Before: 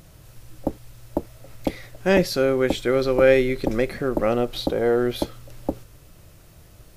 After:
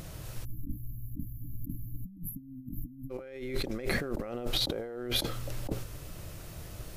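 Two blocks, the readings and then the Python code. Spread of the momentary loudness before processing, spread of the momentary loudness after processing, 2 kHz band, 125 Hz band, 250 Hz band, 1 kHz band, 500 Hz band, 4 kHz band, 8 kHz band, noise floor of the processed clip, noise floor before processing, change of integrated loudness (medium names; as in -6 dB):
15 LU, 13 LU, -12.0 dB, -6.5 dB, -14.5 dB, -16.0 dB, -19.0 dB, -1.5 dB, -3.5 dB, -48 dBFS, -49 dBFS, -14.0 dB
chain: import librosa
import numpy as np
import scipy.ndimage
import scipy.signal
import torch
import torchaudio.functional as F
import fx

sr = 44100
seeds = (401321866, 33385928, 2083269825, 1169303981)

y = fx.over_compress(x, sr, threshold_db=-32.0, ratio=-1.0)
y = fx.spec_erase(y, sr, start_s=0.45, length_s=2.66, low_hz=310.0, high_hz=11000.0)
y = F.gain(torch.from_numpy(y), -3.0).numpy()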